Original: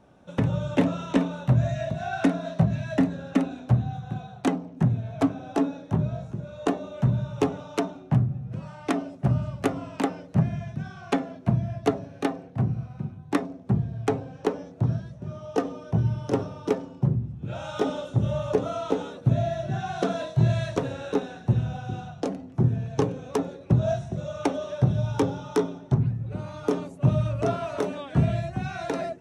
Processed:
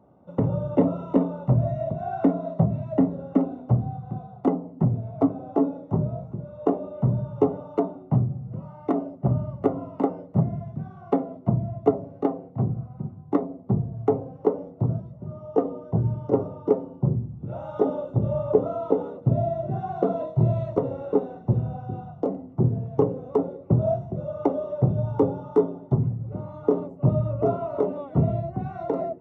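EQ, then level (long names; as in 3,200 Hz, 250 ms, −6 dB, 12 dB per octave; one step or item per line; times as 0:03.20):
dynamic equaliser 450 Hz, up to +5 dB, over −39 dBFS, Q 1.3
Savitzky-Golay smoothing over 65 samples
high-pass filter 68 Hz
0.0 dB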